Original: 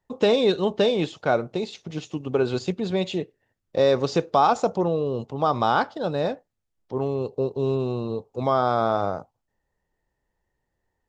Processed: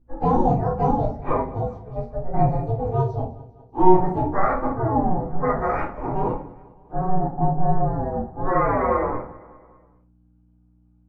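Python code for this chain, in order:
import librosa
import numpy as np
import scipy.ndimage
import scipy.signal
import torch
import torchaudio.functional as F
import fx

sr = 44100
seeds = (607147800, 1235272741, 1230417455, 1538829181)

p1 = fx.partial_stretch(x, sr, pct=120)
p2 = scipy.signal.sosfilt(scipy.signal.butter(2, 1000.0, 'lowpass', fs=sr, output='sos'), p1)
p3 = fx.low_shelf(p2, sr, hz=130.0, db=-8.5)
p4 = p3 * np.sin(2.0 * np.pi * 280.0 * np.arange(len(p3)) / sr)
p5 = fx.add_hum(p4, sr, base_hz=60, snr_db=32)
p6 = p5 + fx.echo_feedback(p5, sr, ms=200, feedback_pct=56, wet_db=-20.0, dry=0)
y = fx.room_shoebox(p6, sr, seeds[0], volume_m3=220.0, walls='furnished', distance_m=3.7)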